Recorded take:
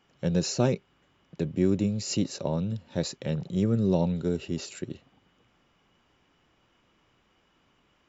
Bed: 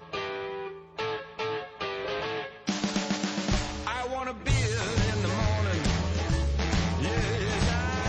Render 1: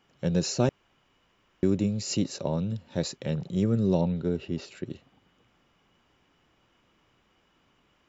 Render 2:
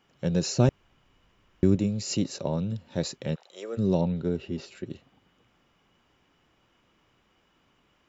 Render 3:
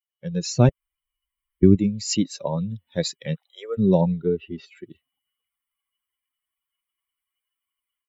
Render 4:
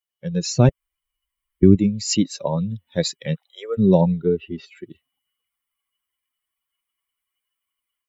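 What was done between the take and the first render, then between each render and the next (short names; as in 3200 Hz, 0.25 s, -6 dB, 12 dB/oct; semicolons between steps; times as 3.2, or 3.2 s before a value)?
0.69–1.63 room tone; 4.01–4.86 air absorption 140 m
0.57–1.76 low shelf 130 Hz +11.5 dB; 3.34–3.77 HPF 890 Hz -> 370 Hz 24 dB/oct; 4.42–4.91 notch comb 150 Hz
per-bin expansion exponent 2; AGC gain up to 11 dB
gain +3 dB; limiter -2 dBFS, peak gain reduction 2.5 dB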